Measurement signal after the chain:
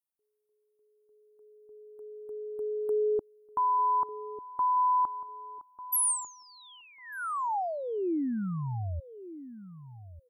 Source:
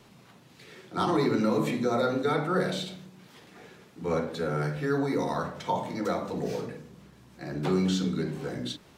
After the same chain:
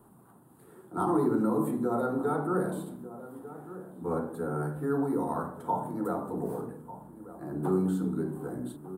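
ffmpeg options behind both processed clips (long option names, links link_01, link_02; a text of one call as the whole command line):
ffmpeg -i in.wav -filter_complex "[0:a]firequalizer=gain_entry='entry(150,0);entry(330,5);entry(540,-3);entry(810,4);entry(1400,-1);entry(2200,-23);entry(3200,-19);entry(5800,-24);entry(8900,7)':delay=0.05:min_phase=1,asplit=2[link_01][link_02];[link_02]adelay=1196,lowpass=frequency=1200:poles=1,volume=-14dB,asplit=2[link_03][link_04];[link_04]adelay=1196,lowpass=frequency=1200:poles=1,volume=0.16[link_05];[link_01][link_03][link_05]amix=inputs=3:normalize=0,volume=-3.5dB" out.wav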